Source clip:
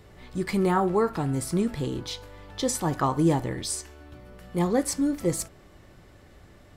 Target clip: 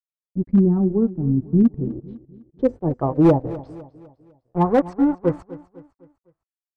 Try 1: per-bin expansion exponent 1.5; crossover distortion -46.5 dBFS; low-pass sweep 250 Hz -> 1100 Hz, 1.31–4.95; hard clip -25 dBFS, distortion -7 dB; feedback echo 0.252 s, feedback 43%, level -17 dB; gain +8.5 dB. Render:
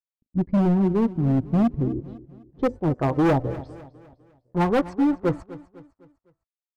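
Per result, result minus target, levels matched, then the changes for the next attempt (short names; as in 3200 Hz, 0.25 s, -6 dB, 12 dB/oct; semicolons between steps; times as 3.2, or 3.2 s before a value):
hard clip: distortion +10 dB; crossover distortion: distortion -6 dB
change: hard clip -17 dBFS, distortion -17 dB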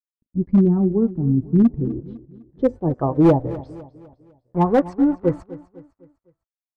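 crossover distortion: distortion -6 dB
change: crossover distortion -39.5 dBFS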